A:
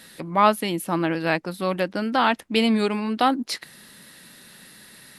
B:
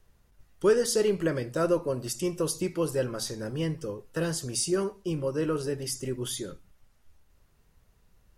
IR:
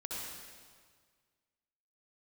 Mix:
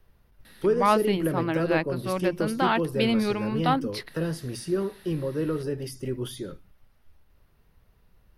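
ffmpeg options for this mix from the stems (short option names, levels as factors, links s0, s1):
-filter_complex "[0:a]adelay=450,volume=0.631[s0];[1:a]acrossover=split=420[s1][s2];[s2]acompressor=threshold=0.01:ratio=2[s3];[s1][s3]amix=inputs=2:normalize=0,volume=1.33[s4];[s0][s4]amix=inputs=2:normalize=0,equalizer=f=7300:t=o:w=0.68:g=-14.5"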